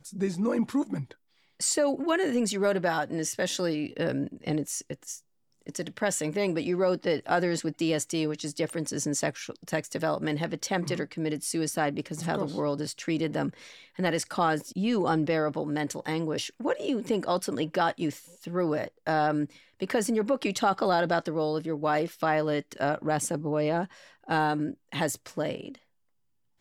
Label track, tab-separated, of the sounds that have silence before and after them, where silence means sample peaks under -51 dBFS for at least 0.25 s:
1.600000	5.200000	sound
5.620000	25.780000	sound